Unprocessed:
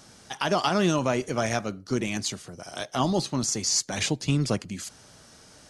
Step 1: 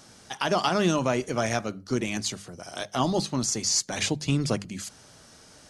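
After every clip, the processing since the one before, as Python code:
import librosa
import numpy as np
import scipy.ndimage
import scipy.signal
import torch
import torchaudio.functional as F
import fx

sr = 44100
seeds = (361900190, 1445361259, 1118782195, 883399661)

y = fx.hum_notches(x, sr, base_hz=50, count=4)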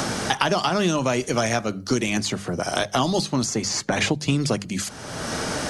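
y = fx.band_squash(x, sr, depth_pct=100)
y = y * librosa.db_to_amplitude(3.5)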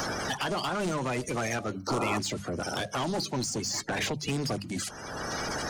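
y = fx.spec_quant(x, sr, step_db=30)
y = 10.0 ** (-22.0 / 20.0) * np.tanh(y / 10.0 ** (-22.0 / 20.0))
y = fx.spec_paint(y, sr, seeds[0], shape='noise', start_s=1.87, length_s=0.32, low_hz=250.0, high_hz=1400.0, level_db=-28.0)
y = y * librosa.db_to_amplitude(-3.5)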